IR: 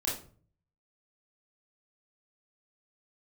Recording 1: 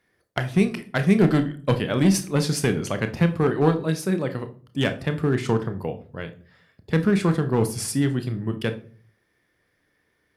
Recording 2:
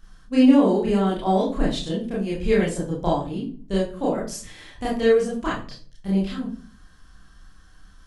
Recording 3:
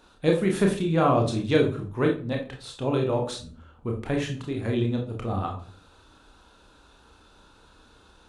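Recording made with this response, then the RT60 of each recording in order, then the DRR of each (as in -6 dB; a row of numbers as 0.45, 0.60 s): 2; 0.45, 0.45, 0.45 s; 8.5, -5.5, 1.0 dB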